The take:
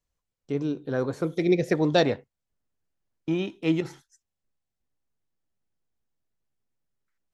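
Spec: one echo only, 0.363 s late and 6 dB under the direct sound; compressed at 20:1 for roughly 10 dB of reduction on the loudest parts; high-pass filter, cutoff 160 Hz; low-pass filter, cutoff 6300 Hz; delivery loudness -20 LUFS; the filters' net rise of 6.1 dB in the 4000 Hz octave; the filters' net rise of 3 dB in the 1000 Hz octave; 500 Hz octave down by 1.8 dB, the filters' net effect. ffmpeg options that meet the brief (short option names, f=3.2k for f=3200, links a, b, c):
-af "highpass=160,lowpass=6.3k,equalizer=f=500:t=o:g=-4,equalizer=f=1k:t=o:g=7,equalizer=f=4k:t=o:g=7,acompressor=threshold=-24dB:ratio=20,aecho=1:1:363:0.501,volume=11.5dB"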